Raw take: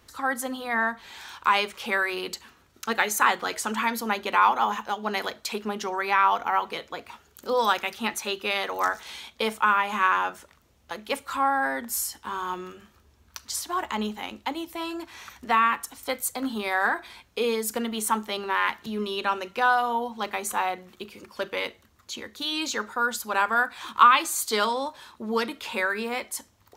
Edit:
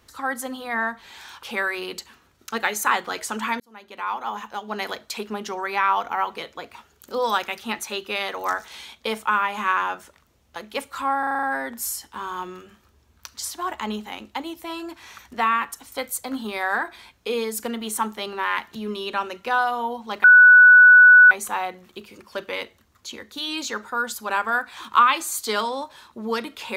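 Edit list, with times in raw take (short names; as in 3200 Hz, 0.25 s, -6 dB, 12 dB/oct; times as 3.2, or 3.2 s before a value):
1.43–1.78 cut
3.95–5.24 fade in
11.54 stutter 0.04 s, 7 plays
20.35 add tone 1480 Hz -6.5 dBFS 1.07 s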